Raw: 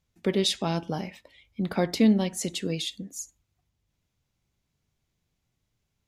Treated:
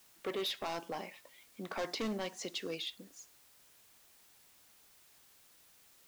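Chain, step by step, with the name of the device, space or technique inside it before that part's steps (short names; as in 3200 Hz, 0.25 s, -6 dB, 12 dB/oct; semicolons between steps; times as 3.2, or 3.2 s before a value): drive-through speaker (BPF 410–3600 Hz; bell 1100 Hz +7 dB 0.22 oct; hard clip -28 dBFS, distortion -8 dB; white noise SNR 20 dB); 0.58–2.78 dynamic EQ 5800 Hz, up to +6 dB, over -54 dBFS, Q 1.4; gain -4.5 dB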